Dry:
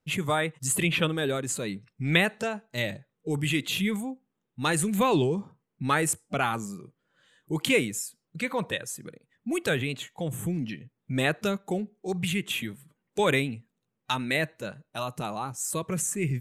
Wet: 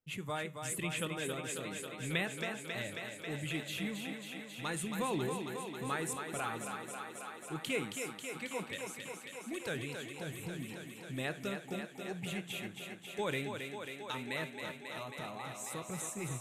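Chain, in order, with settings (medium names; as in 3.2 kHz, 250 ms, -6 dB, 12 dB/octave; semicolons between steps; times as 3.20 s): flange 0.28 Hz, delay 8.2 ms, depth 2.7 ms, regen -85%; thinning echo 271 ms, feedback 83%, high-pass 170 Hz, level -6 dB; trim -8 dB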